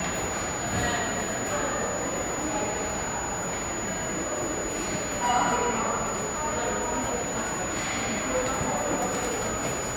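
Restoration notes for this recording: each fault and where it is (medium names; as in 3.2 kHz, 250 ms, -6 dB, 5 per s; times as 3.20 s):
whine 6.9 kHz -33 dBFS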